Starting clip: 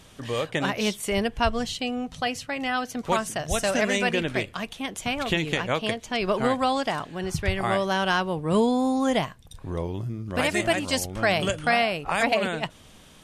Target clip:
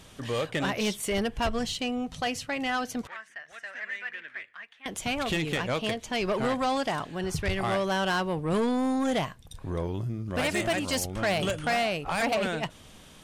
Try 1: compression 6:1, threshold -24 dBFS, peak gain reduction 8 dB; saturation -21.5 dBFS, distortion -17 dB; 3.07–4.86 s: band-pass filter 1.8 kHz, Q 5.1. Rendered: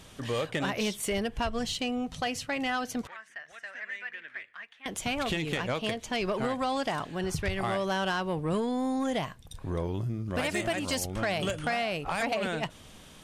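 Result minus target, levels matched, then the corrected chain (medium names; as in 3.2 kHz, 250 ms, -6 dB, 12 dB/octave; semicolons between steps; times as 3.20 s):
compression: peak gain reduction +8 dB
saturation -21.5 dBFS, distortion -11 dB; 3.07–4.86 s: band-pass filter 1.8 kHz, Q 5.1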